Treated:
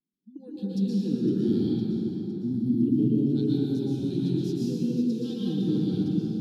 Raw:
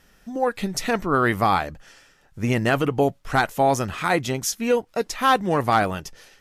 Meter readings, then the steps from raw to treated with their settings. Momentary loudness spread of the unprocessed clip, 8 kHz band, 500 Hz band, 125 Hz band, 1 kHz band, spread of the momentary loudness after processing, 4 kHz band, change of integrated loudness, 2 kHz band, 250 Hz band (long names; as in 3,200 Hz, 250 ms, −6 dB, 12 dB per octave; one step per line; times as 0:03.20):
8 LU, below −20 dB, −10.0 dB, −0.5 dB, below −35 dB, 7 LU, −12.5 dB, −4.5 dB, below −30 dB, +3.5 dB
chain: healed spectral selection 0:02.15–0:02.82, 360–8,700 Hz before
elliptic band-stop filter 320–4,100 Hz, stop band 40 dB
noise reduction from a noise print of the clip's start 23 dB
high-pass filter 170 Hz 24 dB per octave
dynamic equaliser 400 Hz, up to −4 dB, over −41 dBFS, Q 0.77
pitch vibrato 0.48 Hz 24 cents
high-frequency loss of the air 440 metres
delay with a high-pass on its return 509 ms, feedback 60%, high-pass 4,200 Hz, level −10.5 dB
dense smooth reverb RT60 4.1 s, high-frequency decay 0.45×, pre-delay 105 ms, DRR −8.5 dB